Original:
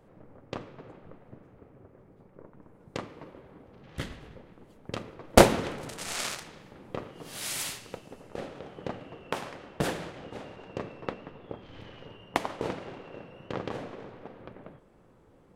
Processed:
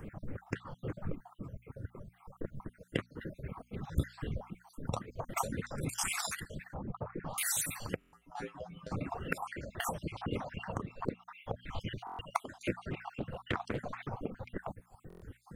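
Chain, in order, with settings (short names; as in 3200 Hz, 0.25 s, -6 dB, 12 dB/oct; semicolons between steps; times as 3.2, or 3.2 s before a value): random spectral dropouts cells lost 53%; bell 67 Hz +3 dB 2.2 oct; notches 60/120/180/240 Hz; 7.96–8.92 resonator 57 Hz, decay 0.22 s, harmonics odd, mix 100%; compressor 6:1, threshold -43 dBFS, peak gain reduction 24.5 dB; 6.74–7.38 LPF 1300 Hz 12 dB/oct; reverb removal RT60 1.5 s; phaser stages 4, 3.8 Hz, lowest notch 320–1000 Hz; stuck buffer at 7.99/12.05/15.08, samples 1024, times 5; 12.93–13.87 Doppler distortion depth 0.5 ms; gain +15 dB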